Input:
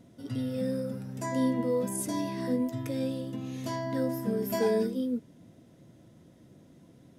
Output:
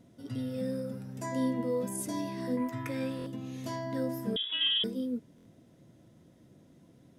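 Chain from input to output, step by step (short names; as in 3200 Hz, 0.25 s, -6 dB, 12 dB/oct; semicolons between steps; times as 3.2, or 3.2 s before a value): 2.57–3.26 band shelf 1500 Hz +10.5 dB; 4.36–4.84 inverted band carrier 3600 Hz; stuck buffer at 3.17/5.36, samples 1024, times 3; gain -3 dB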